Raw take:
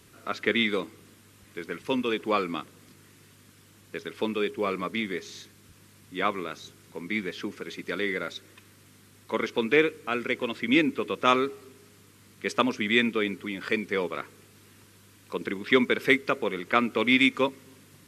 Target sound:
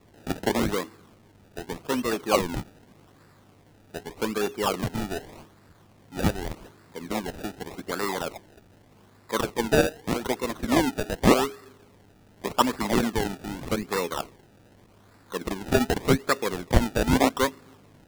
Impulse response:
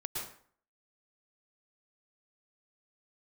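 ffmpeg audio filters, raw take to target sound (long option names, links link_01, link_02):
-filter_complex "[0:a]adynamicequalizer=threshold=0.00631:dfrequency=1200:dqfactor=2.4:tfrequency=1200:tqfactor=2.4:attack=5:release=100:ratio=0.375:range=3.5:mode=boostabove:tftype=bell,acrusher=samples=28:mix=1:aa=0.000001:lfo=1:lforange=28:lforate=0.84,acrossover=split=1200[link_01][link_02];[link_02]asoftclip=type=hard:threshold=-16.5dB[link_03];[link_01][link_03]amix=inputs=2:normalize=0"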